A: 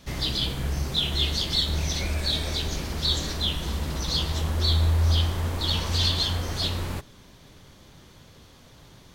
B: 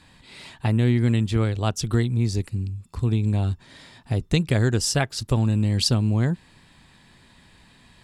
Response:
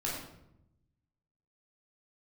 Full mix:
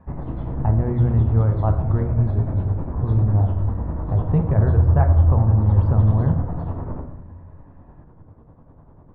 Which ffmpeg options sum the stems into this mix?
-filter_complex "[0:a]tremolo=f=10:d=0.79,volume=0dB,asplit=2[a][b];[b]volume=-3.5dB[c];[1:a]equalizer=f=270:t=o:w=1.2:g=-11.5,volume=1.5dB,asplit=2[d][e];[e]volume=-7.5dB[f];[2:a]atrim=start_sample=2205[g];[c][f]amix=inputs=2:normalize=0[h];[h][g]afir=irnorm=-1:irlink=0[i];[a][d][i]amix=inputs=3:normalize=0,lowpass=f=1.1k:w=0.5412,lowpass=f=1.1k:w=1.3066"

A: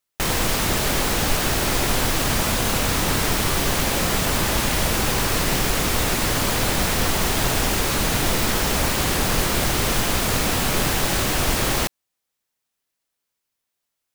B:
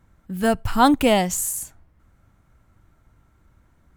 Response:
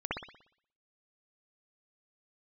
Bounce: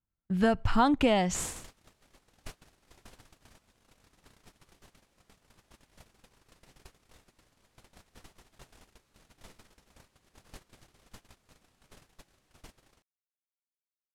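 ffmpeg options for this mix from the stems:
-filter_complex "[0:a]lowpass=11k,adelay=1150,volume=-17.5dB[a];[1:a]lowpass=4.9k,volume=0.5dB[b];[a][b]amix=inputs=2:normalize=0,agate=range=-33dB:threshold=-34dB:ratio=16:detection=peak,acompressor=threshold=-21dB:ratio=6"

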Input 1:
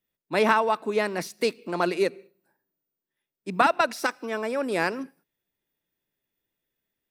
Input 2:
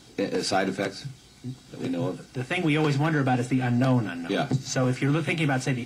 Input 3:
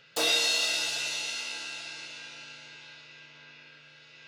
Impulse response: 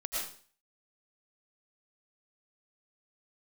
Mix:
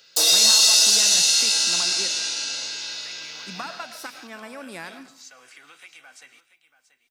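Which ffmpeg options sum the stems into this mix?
-filter_complex "[0:a]equalizer=f=440:w=1.5:g=-11.5,acompressor=threshold=-29dB:ratio=3,volume=-6.5dB,asplit=2[a][b];[b]volume=-11.5dB[c];[1:a]highpass=1.2k,acompressor=threshold=-43dB:ratio=3,adelay=550,volume=-6dB,asplit=3[d][e][f];[e]volume=-20.5dB[g];[f]volume=-14dB[h];[2:a]highpass=250,highshelf=f=3.6k:t=q:w=1.5:g=9.5,dynaudnorm=f=120:g=11:m=11dB,volume=-2dB,asplit=2[i][j];[j]volume=-11.5dB[k];[3:a]atrim=start_sample=2205[l];[c][g][k]amix=inputs=3:normalize=0[m];[m][l]afir=irnorm=-1:irlink=0[n];[h]aecho=0:1:683:1[o];[a][d][i][n][o]amix=inputs=5:normalize=0,highshelf=f=6.6k:g=6"

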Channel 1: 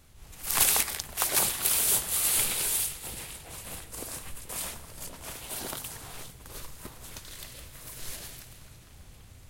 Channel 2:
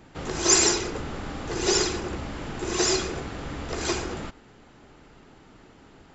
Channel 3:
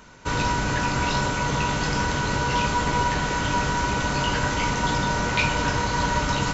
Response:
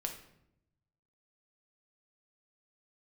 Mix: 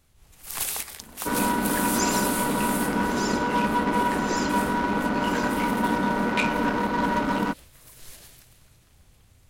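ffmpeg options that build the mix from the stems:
-filter_complex "[0:a]volume=-6dB[a];[1:a]adelay=1500,volume=-10.5dB[b];[2:a]lowshelf=f=160:t=q:w=3:g=-11,adynamicsmooth=sensitivity=1:basefreq=1.1k,adelay=1000,volume=0dB[c];[a][b][c]amix=inputs=3:normalize=0"

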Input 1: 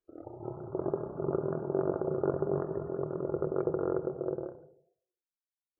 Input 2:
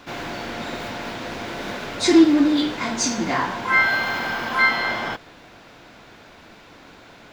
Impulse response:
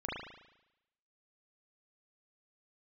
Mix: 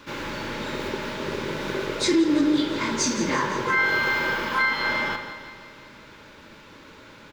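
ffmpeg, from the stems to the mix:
-filter_complex "[0:a]volume=-1dB[a];[1:a]volume=-3dB,asplit=3[b][c][d];[c]volume=-10dB[e];[d]volume=-10dB[f];[2:a]atrim=start_sample=2205[g];[e][g]afir=irnorm=-1:irlink=0[h];[f]aecho=0:1:170|340|510|680|850|1020|1190|1360|1530:1|0.59|0.348|0.205|0.121|0.0715|0.0422|0.0249|0.0147[i];[a][b][h][i]amix=inputs=4:normalize=0,asuperstop=centerf=720:order=8:qfactor=4.9,alimiter=limit=-12.5dB:level=0:latency=1:release=201"

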